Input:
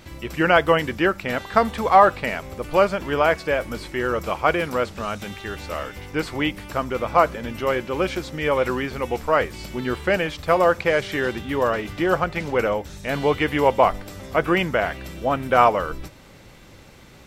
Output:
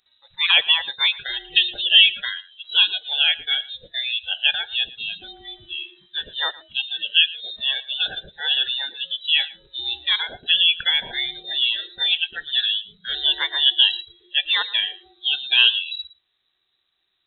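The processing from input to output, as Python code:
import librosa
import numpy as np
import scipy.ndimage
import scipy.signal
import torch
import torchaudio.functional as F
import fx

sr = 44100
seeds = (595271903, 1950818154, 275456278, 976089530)

y = fx.noise_reduce_blind(x, sr, reduce_db=26)
y = fx.freq_invert(y, sr, carrier_hz=3900)
y = y + 10.0 ** (-19.5 / 20.0) * np.pad(y, (int(114 * sr / 1000.0), 0))[:len(y)]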